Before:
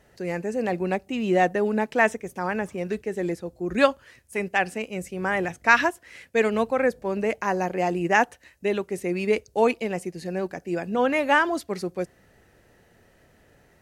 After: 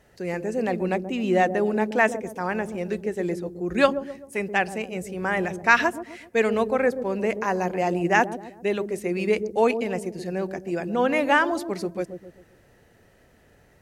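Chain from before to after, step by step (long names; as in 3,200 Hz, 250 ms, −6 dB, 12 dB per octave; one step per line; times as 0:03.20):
delay with a low-pass on its return 130 ms, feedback 41%, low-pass 480 Hz, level −6 dB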